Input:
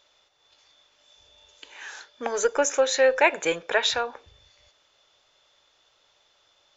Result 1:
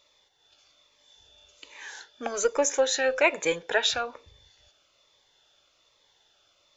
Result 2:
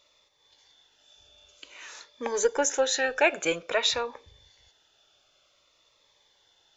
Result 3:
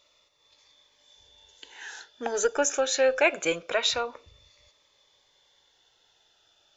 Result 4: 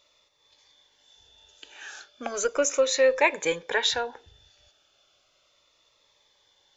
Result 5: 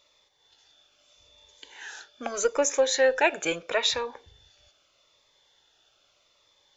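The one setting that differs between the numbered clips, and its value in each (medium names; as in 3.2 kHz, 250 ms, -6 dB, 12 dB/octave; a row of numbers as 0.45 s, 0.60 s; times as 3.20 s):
Shepard-style phaser, rate: 1.2 Hz, 0.52 Hz, 0.24 Hz, 0.35 Hz, 0.79 Hz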